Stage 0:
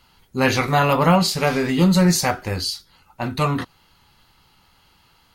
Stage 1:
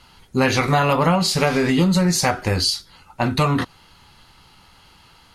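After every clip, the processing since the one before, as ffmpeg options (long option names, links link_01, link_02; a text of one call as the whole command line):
ffmpeg -i in.wav -af "lowpass=frequency=12000:width=0.5412,lowpass=frequency=12000:width=1.3066,acompressor=threshold=-21dB:ratio=5,volume=6.5dB" out.wav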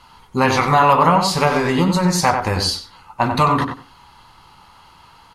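ffmpeg -i in.wav -filter_complex "[0:a]equalizer=frequency=1000:width_type=o:width=0.73:gain=10.5,asplit=2[link_01][link_02];[link_02]adelay=93,lowpass=frequency=2100:poles=1,volume=-5dB,asplit=2[link_03][link_04];[link_04]adelay=93,lowpass=frequency=2100:poles=1,volume=0.2,asplit=2[link_05][link_06];[link_06]adelay=93,lowpass=frequency=2100:poles=1,volume=0.2[link_07];[link_03][link_05][link_07]amix=inputs=3:normalize=0[link_08];[link_01][link_08]amix=inputs=2:normalize=0,volume=-1dB" out.wav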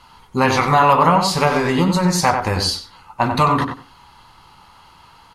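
ffmpeg -i in.wav -af anull out.wav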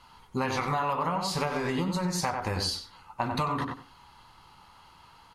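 ffmpeg -i in.wav -af "acompressor=threshold=-18dB:ratio=6,volume=-7.5dB" out.wav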